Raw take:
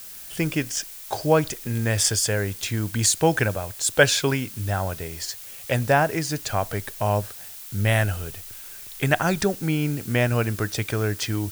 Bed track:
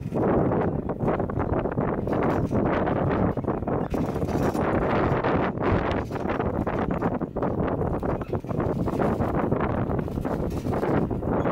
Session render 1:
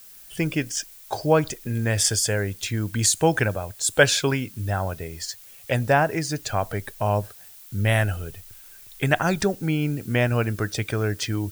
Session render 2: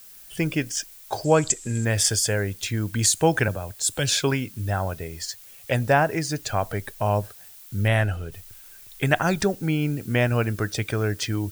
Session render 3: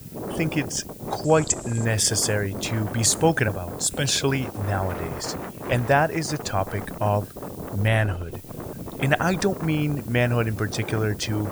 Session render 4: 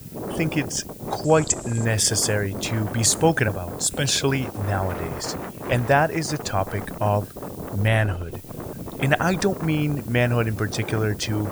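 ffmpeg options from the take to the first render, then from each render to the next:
-af "afftdn=nr=8:nf=-40"
-filter_complex "[0:a]asettb=1/sr,asplit=3[a][b][c];[a]atrim=end=1.244[d];[b]atrim=start=1.24:end=1.85,asetpts=PTS-STARTPTS,afade=t=in:d=0.004:c=qsin,afade=t=out:st=0.606:d=0.004:c=qsin,lowpass=f=7.6k:t=q:w=12[e];[c]atrim=start=1.846[f];[d][e]acrossfade=d=0.004:c1=hsin:c2=qsin[g];[g][f]acrossfade=d=0.004:c1=qsin:c2=hsin,asettb=1/sr,asplit=3[h][i][j];[h]atrim=end=3.484[k];[i]atrim=start=3.48:end=4.13,asetpts=PTS-STARTPTS,afade=t=in:d=0.004:c=qsin,afade=t=out:st=0.646:d=0.004:c=qsin,acrossover=split=270|3000[l][m][n];[m]acompressor=threshold=-28dB:ratio=6:attack=3.2:release=140:knee=2.83:detection=peak[o];[l][o][n]amix=inputs=3:normalize=0[p];[j]atrim=start=4.126[q];[k][p]acrossfade=d=0.004:c1=hsin:c2=qsin[r];[r][q]acrossfade=d=0.004:c1=qsin:c2=hsin,asettb=1/sr,asplit=3[s][t][u];[s]atrim=end=7.884[v];[t]atrim=start=7.88:end=8.32,asetpts=PTS-STARTPTS,afade=t=in:d=0.004:c=qsin,afade=t=out:st=0.436:d=0.004:c=qsin,lowpass=f=4k:p=1[w];[u]atrim=start=8.316[x];[v][w]acrossfade=d=0.004:c1=hsin:c2=qsin[y];[y][x]acrossfade=d=0.004:c1=qsin:c2=hsin"
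-filter_complex "[1:a]volume=-9.5dB[a];[0:a][a]amix=inputs=2:normalize=0"
-af "volume=1dB"

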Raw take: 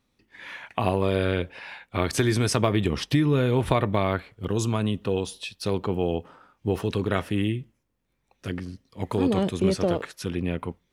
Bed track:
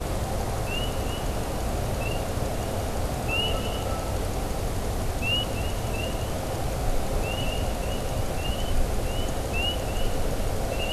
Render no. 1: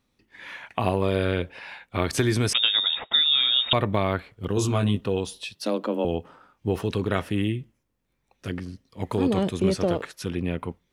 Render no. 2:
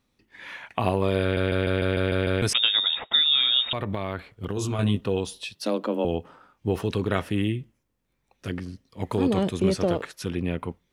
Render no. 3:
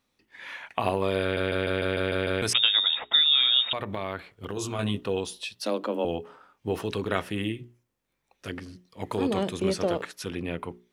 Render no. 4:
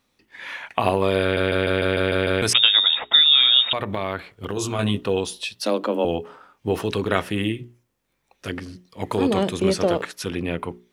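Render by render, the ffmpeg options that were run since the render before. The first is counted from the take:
-filter_complex "[0:a]asettb=1/sr,asplit=3[a][b][c];[a]atrim=end=2.534[d];[b]atrim=start=2.53:end=3.73,asetpts=PTS-STARTPTS,afade=t=in:d=0.004:c=qsin,afade=t=out:st=1.196:d=0.004:c=qsin,lowpass=f=3.2k:t=q:w=0.5098,lowpass=f=3.2k:t=q:w=0.6013,lowpass=f=3.2k:t=q:w=0.9,lowpass=f=3.2k:t=q:w=2.563,afreqshift=-3800[e];[c]atrim=start=3.726[f];[d][e]acrossfade=d=0.004:c1=hsin:c2=qsin[g];[g][f]acrossfade=d=0.004:c1=qsin:c2=hsin,asettb=1/sr,asplit=3[h][i][j];[h]atrim=end=4.554[k];[i]atrim=start=4.55:end=5.01,asetpts=PTS-STARTPTS,afade=t=in:d=0.004:c=qsin,afade=t=out:st=0.456:d=0.004:c=qsin,asplit=2[l][m];[m]adelay=20,volume=-2dB[n];[l][n]amix=inputs=2:normalize=0,atrim=end_sample=20286[o];[j]atrim=start=5.006[p];[k][o]acrossfade=d=0.004:c1=hsin:c2=qsin[q];[q][p]acrossfade=d=0.004:c1=qsin:c2=hsin,asettb=1/sr,asplit=3[r][s][t];[r]atrim=end=5.554[u];[s]atrim=start=5.55:end=6.05,asetpts=PTS-STARTPTS,afade=t=in:d=0.004:c=qsin,afade=t=out:st=0.496:d=0.004:c=qsin,afreqshift=110[v];[t]atrim=start=6.046[w];[u][v]acrossfade=d=0.004:c1=hsin:c2=qsin[x];[x][w]acrossfade=d=0.004:c1=qsin:c2=hsin"
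-filter_complex "[0:a]asettb=1/sr,asplit=3[a][b][c];[a]atrim=end=3.624[d];[b]atrim=start=3.62:end=4.79,asetpts=PTS-STARTPTS,afade=t=in:d=0.004:c=qsin,afade=t=out:st=1.166:d=0.004:c=qsin,acompressor=threshold=-24dB:ratio=4:attack=3.2:release=140:knee=1:detection=peak[e];[c]atrim=start=4.786[f];[d][e]acrossfade=d=0.004:c1=hsin:c2=qsin[g];[g][f]acrossfade=d=0.004:c1=qsin:c2=hsin,asplit=9[h][i][j][k][l][m][n][o][p];[h]atrim=end=1.372[q];[i]atrim=start=1.218:end=1.372[r];[j]atrim=start=1.218:end=1.372[s];[k]atrim=start=1.218:end=1.372[t];[l]atrim=start=1.218:end=1.372[u];[m]atrim=start=1.218:end=1.372[v];[n]atrim=start=1.218:end=1.372[w];[o]atrim=start=1.218:end=1.372[x];[p]atrim=start=2.418[y];[q][r]acrossfade=d=0.004:c1=hsin:c2=hsin[z];[z][s]acrossfade=d=0.004:c1=hsin:c2=hsin[aa];[aa][t]acrossfade=d=0.004:c1=hsin:c2=hsin[ab];[ab][u]acrossfade=d=0.004:c1=hsin:c2=hsin[ac];[ac][v]acrossfade=d=0.004:c1=hsin:c2=hsin[ad];[ad][w]acrossfade=d=0.004:c1=hsin:c2=hsin[ae];[ae][x]acrossfade=d=0.004:c1=hsin:c2=hsin[af];[af][y]acrossfade=d=0.004:c1=hsin:c2=hsin"
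-af "lowshelf=f=240:g=-8.5,bandreject=f=60:t=h:w=6,bandreject=f=120:t=h:w=6,bandreject=f=180:t=h:w=6,bandreject=f=240:t=h:w=6,bandreject=f=300:t=h:w=6,bandreject=f=360:t=h:w=6,bandreject=f=420:t=h:w=6"
-af "volume=6dB"

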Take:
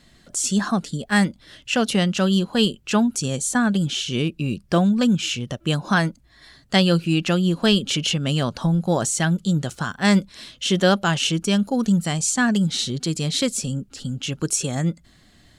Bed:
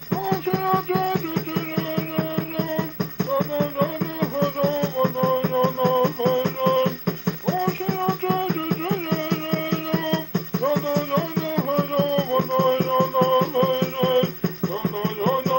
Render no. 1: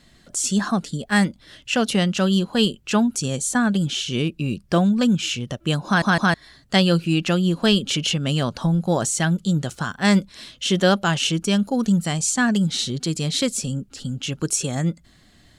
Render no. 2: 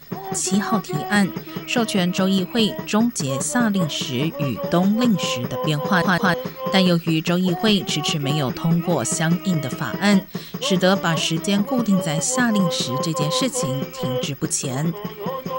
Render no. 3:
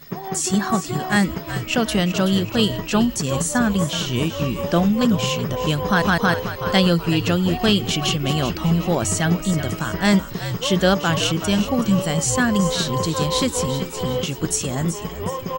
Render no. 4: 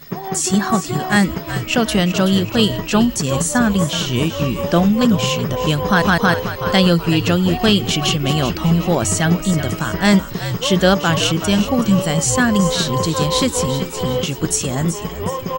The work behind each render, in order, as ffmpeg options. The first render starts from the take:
-filter_complex "[0:a]asplit=4[a][b][c][d];[a]atrim=end=6.022[e];[b]atrim=start=5.858:end=6.022[f];[c]atrim=start=5.858:end=6.022[g];[d]atrim=start=6.338[h];[e][f]acrossfade=d=0.004:c1=hsin:c2=hsin[i];[i][g]acrossfade=d=0.004:c1=hsin:c2=hsin[j];[j][h]acrossfade=d=0.004:c1=hsin:c2=hsin"
-filter_complex "[1:a]volume=-6dB[a];[0:a][a]amix=inputs=2:normalize=0"
-filter_complex "[0:a]asplit=5[a][b][c][d][e];[b]adelay=376,afreqshift=-72,volume=-11dB[f];[c]adelay=752,afreqshift=-144,volume=-18.5dB[g];[d]adelay=1128,afreqshift=-216,volume=-26.1dB[h];[e]adelay=1504,afreqshift=-288,volume=-33.6dB[i];[a][f][g][h][i]amix=inputs=5:normalize=0"
-af "volume=3.5dB,alimiter=limit=-1dB:level=0:latency=1"

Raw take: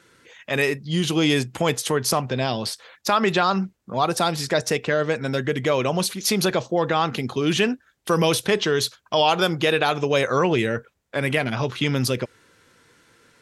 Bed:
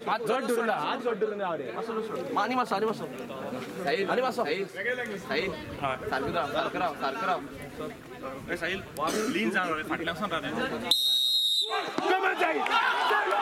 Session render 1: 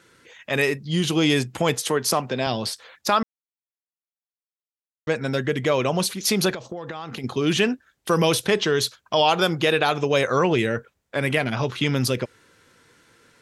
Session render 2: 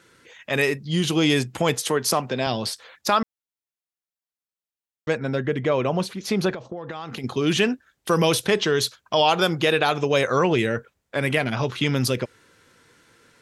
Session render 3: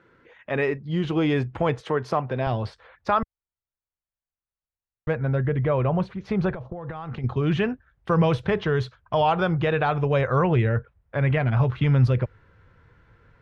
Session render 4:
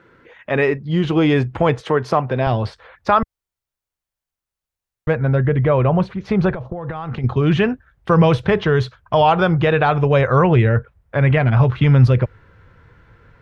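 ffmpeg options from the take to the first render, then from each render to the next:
-filter_complex "[0:a]asettb=1/sr,asplit=3[a][b][c];[a]atrim=end=1.804[d];[b]atrim=start=1.8:end=2.47,asetpts=PTS-STARTPTS,afade=t=in:d=0.004:c=qsin,afade=t=out:st=0.666:d=0.004:c=qsin,highpass=170[e];[c]atrim=start=2.466[f];[d][e]acrossfade=d=0.004:c1=hsin:c2=qsin[g];[g][f]acrossfade=d=0.004:c1=qsin:c2=hsin,asettb=1/sr,asplit=3[h][i][j];[h]atrim=end=6.544[k];[i]atrim=start=6.54:end=7.24,asetpts=PTS-STARTPTS,afade=t=in:d=0.004:c=qsin,afade=t=out:st=0.696:d=0.004:c=qsin,acompressor=threshold=-28dB:ratio=16:attack=3.2:release=140:knee=1:detection=peak[l];[j]atrim=start=7.236[m];[k][l]acrossfade=d=0.004:c1=hsin:c2=qsin[n];[n][m]acrossfade=d=0.004:c1=qsin:c2=hsin,asplit=3[o][p][q];[o]atrim=end=3.23,asetpts=PTS-STARTPTS,afade=t=out:st=3.226:d=0.004:c=hsin[r];[p]atrim=start=3.23:end=5.07,asetpts=PTS-STARTPTS,volume=0[s];[q]atrim=start=5.07,asetpts=PTS-STARTPTS,afade=t=in:d=0.004:c=hsin[t];[r][s][t]concat=n=3:v=0:a=1"
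-filter_complex "[0:a]asettb=1/sr,asplit=3[a][b][c];[a]atrim=end=5.154[d];[b]atrim=start=5.15:end=6.9,asetpts=PTS-STARTPTS,afade=t=in:d=0.004:c=qsin,afade=t=out:st=1.746:d=0.004:c=qsin,lowpass=f=1.8k:p=1[e];[c]atrim=start=6.896[f];[d][e]acrossfade=d=0.004:c1=hsin:c2=qsin[g];[g][f]acrossfade=d=0.004:c1=qsin:c2=hsin"
-af "lowpass=1.6k,asubboost=boost=11:cutoff=82"
-af "volume=7dB"

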